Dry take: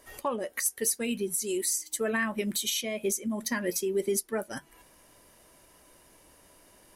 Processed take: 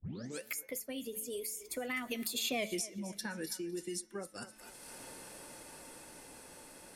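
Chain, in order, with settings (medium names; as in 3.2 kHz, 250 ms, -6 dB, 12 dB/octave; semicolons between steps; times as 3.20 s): tape start-up on the opening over 0.56 s; Doppler pass-by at 2.61 s, 39 m/s, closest 2.2 m; de-hum 217.7 Hz, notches 30; on a send: thinning echo 252 ms, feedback 23%, high-pass 390 Hz, level -19 dB; on the sum: three bands compressed up and down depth 100%; trim +11 dB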